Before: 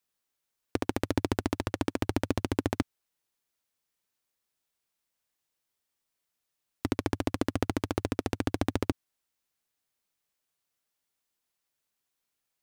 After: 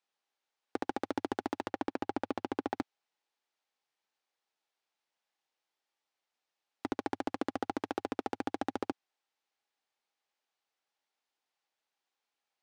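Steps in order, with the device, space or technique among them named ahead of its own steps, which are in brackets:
intercom (band-pass filter 330–4,800 Hz; parametric band 810 Hz +8 dB 0.24 octaves; soft clipping −20.5 dBFS, distortion −12 dB)
0:01.70–0:02.77: high-shelf EQ 6,300 Hz −8.5 dB

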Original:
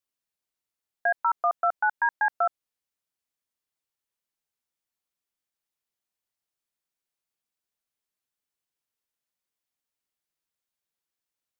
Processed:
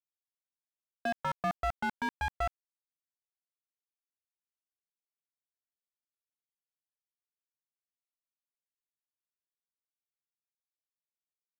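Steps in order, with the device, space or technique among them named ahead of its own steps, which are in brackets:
early transistor amplifier (dead-zone distortion −51 dBFS; slew-rate limiting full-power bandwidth 35 Hz)

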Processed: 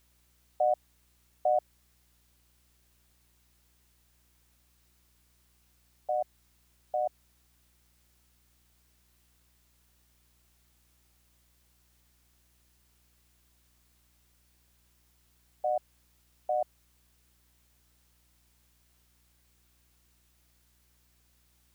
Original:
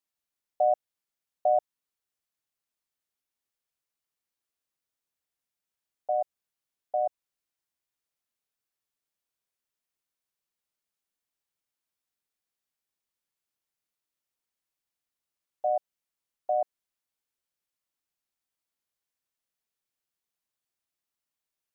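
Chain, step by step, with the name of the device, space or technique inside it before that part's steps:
video cassette with head-switching buzz (hum with harmonics 60 Hz, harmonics 6, −67 dBFS −8 dB per octave; white noise bed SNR 29 dB)
level −3 dB

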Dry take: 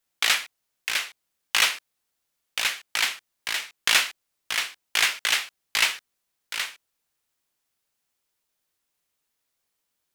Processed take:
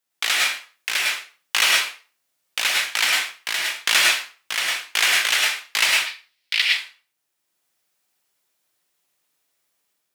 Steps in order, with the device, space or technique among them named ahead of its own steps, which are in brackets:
0:05.96–0:06.62: flat-topped bell 3,100 Hz +14 dB
far laptop microphone (convolution reverb RT60 0.35 s, pre-delay 97 ms, DRR −1.5 dB; high-pass filter 170 Hz 6 dB per octave; automatic gain control gain up to 4.5 dB)
level −1.5 dB

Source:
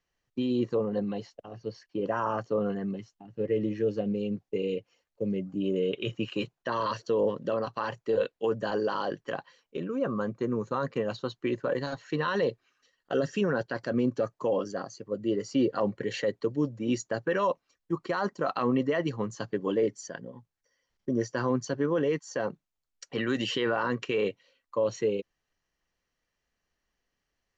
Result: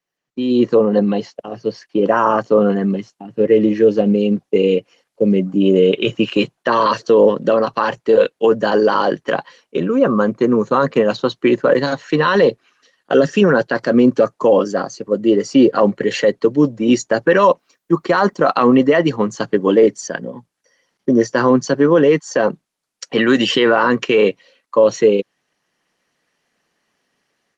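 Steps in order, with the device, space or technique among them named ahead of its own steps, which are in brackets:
video call (high-pass filter 150 Hz 24 dB per octave; automatic gain control gain up to 16 dB; level +1 dB; Opus 24 kbit/s 48,000 Hz)

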